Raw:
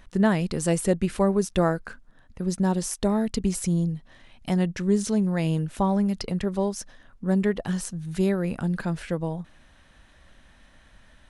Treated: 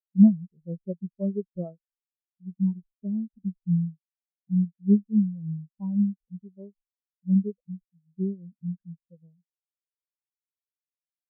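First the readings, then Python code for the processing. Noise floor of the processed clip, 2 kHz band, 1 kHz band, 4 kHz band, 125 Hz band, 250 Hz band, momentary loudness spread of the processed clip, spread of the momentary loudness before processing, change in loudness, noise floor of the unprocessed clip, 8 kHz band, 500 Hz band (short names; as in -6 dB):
under -85 dBFS, under -40 dB, under -25 dB, under -40 dB, -2.5 dB, -0.5 dB, 20 LU, 10 LU, -1.5 dB, -56 dBFS, under -40 dB, -13.0 dB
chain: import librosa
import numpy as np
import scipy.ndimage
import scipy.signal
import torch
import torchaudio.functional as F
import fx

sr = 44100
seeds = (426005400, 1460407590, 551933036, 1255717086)

y = fx.tracing_dist(x, sr, depth_ms=0.19)
y = fx.spectral_expand(y, sr, expansion=4.0)
y = y * 10.0 ** (2.0 / 20.0)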